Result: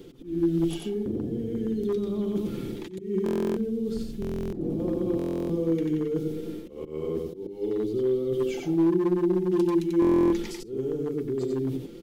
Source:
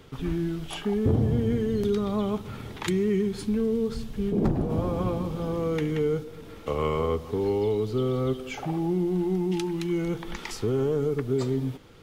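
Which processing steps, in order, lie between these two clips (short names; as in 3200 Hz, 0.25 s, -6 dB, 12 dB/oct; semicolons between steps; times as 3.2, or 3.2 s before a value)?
reverse; compressor 10:1, threshold -33 dBFS, peak gain reduction 15.5 dB; reverse; EQ curve 130 Hz 0 dB, 340 Hz +14 dB, 670 Hz -4 dB, 1100 Hz -10 dB, 3600 Hz -1 dB; on a send: echo 91 ms -3 dB; on the sum: auto swell 0.203 s; hard clip -19.5 dBFS, distortion -21 dB; high shelf 9800 Hz +6 dB; notches 50/100/150/200/250/300/350 Hz; comb 5.8 ms, depth 38%; stuck buffer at 3.24/4.2/5.17/10, samples 1024, times 13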